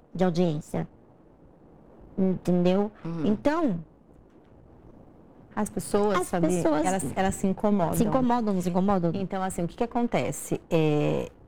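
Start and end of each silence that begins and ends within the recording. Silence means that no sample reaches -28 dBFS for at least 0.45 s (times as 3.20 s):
0.83–2.18 s
3.79–5.57 s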